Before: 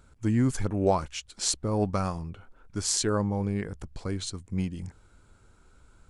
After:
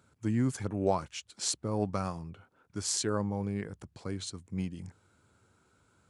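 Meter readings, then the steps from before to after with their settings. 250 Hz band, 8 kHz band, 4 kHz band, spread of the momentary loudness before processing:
-4.5 dB, -4.5 dB, -4.5 dB, 13 LU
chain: high-pass 89 Hz 24 dB/octave; trim -4.5 dB

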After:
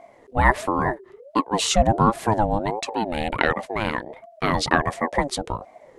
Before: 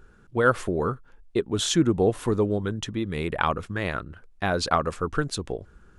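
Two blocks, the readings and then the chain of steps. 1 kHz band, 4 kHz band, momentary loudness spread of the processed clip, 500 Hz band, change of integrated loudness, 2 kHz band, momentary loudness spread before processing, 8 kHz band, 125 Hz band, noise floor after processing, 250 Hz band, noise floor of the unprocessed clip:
+7.5 dB, +3.0 dB, 10 LU, 0.0 dB, +3.0 dB, +5.0 dB, 10 LU, +3.0 dB, +1.5 dB, -52 dBFS, +1.0 dB, -55 dBFS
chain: ring modulator with a swept carrier 530 Hz, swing 30%, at 1.4 Hz; trim +6 dB

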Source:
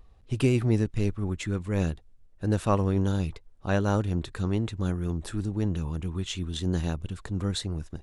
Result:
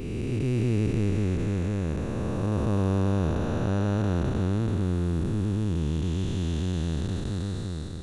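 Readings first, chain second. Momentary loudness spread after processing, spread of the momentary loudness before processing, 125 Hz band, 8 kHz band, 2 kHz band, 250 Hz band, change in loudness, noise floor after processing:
5 LU, 8 LU, +2.0 dB, -3.0 dB, -2.0 dB, +1.5 dB, +1.5 dB, -32 dBFS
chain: spectral blur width 1030 ms; trim +5 dB

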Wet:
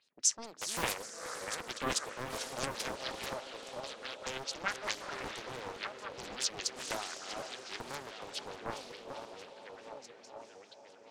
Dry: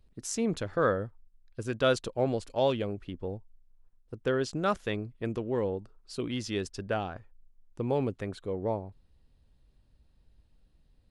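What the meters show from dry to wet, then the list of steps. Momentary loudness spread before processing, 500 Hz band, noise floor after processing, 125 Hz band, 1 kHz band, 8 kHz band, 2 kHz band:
12 LU, -12.5 dB, -57 dBFS, -16.0 dB, -4.0 dB, +8.5 dB, -0.5 dB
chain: backward echo that repeats 597 ms, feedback 62%, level -8 dB; high-pass 150 Hz 12 dB/octave; treble shelf 9.4 kHz -11 dB; in parallel at +3 dB: compression, threshold -38 dBFS, peak gain reduction 16.5 dB; on the sum: differentiator; saturation -21.5 dBFS, distortion -24 dB; LFO low-pass sine 4.7 Hz 600–7000 Hz; on a send: echo that smears into a reverb 457 ms, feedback 41%, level -7.5 dB; on the sum: loudspeaker Doppler distortion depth 0.93 ms; trim +5.5 dB

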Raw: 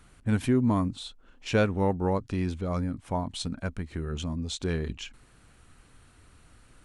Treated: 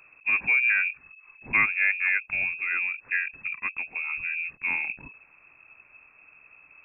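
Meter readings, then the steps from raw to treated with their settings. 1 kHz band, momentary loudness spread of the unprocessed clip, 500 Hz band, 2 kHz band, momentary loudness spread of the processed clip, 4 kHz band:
-4.5 dB, 12 LU, under -20 dB, +17.5 dB, 11 LU, under -10 dB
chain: frequency inversion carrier 2.6 kHz; dynamic bell 1.6 kHz, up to +5 dB, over -43 dBFS, Q 3.5

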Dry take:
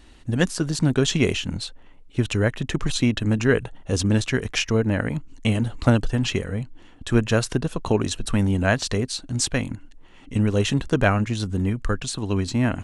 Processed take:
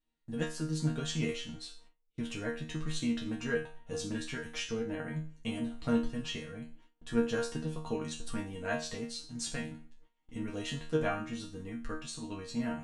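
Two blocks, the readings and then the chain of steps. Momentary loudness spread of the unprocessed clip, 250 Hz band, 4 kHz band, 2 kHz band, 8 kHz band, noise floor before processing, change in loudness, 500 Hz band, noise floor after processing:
8 LU, -12.0 dB, -12.5 dB, -13.0 dB, -13.0 dB, -47 dBFS, -13.0 dB, -12.0 dB, -75 dBFS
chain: chord resonator D#3 fifth, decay 0.39 s; gate with hold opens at -49 dBFS; trim +2.5 dB

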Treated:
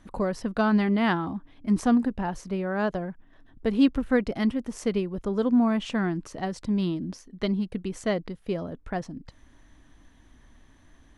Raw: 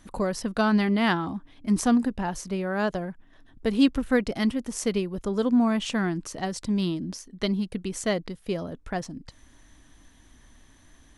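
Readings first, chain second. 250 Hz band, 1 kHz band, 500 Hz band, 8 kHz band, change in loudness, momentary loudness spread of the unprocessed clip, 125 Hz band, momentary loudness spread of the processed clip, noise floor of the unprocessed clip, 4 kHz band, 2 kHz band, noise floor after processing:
0.0 dB, -0.5 dB, 0.0 dB, -9.0 dB, -0.5 dB, 12 LU, 0.0 dB, 12 LU, -56 dBFS, -5.0 dB, -2.0 dB, -57 dBFS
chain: treble shelf 4.1 kHz -12 dB

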